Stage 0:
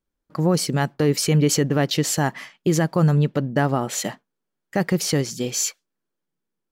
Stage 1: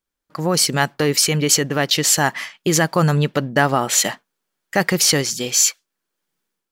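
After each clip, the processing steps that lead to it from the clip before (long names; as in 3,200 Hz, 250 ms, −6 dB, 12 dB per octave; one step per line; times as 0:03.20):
tilt shelving filter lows −6 dB, about 650 Hz
automatic gain control gain up to 10 dB
level −1 dB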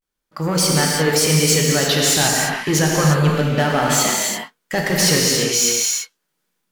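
soft clipping −14 dBFS, distortion −12 dB
pitch vibrato 0.31 Hz 68 cents
reverb whose tail is shaped and stops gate 370 ms flat, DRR −3 dB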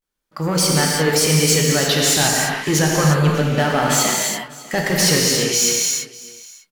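single-tap delay 598 ms −20.5 dB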